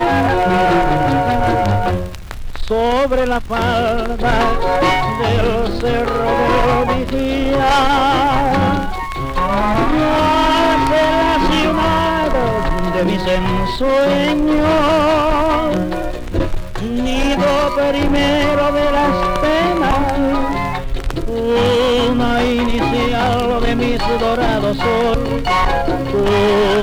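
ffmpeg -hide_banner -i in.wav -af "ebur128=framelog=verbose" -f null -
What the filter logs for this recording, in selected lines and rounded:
Integrated loudness:
  I:         -15.6 LUFS
  Threshold: -25.6 LUFS
Loudness range:
  LRA:         2.1 LU
  Threshold: -35.7 LUFS
  LRA low:   -16.6 LUFS
  LRA high:  -14.6 LUFS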